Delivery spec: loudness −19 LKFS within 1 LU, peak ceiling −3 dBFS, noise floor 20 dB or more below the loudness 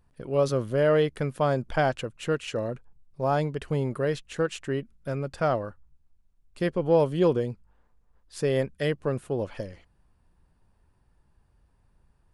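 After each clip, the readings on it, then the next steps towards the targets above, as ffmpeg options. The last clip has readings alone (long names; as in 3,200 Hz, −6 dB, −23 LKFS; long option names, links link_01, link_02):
integrated loudness −27.5 LKFS; sample peak −10.5 dBFS; target loudness −19.0 LKFS
→ -af "volume=8.5dB,alimiter=limit=-3dB:level=0:latency=1"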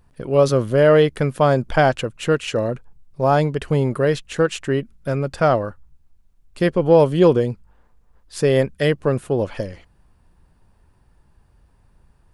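integrated loudness −19.0 LKFS; sample peak −3.0 dBFS; background noise floor −58 dBFS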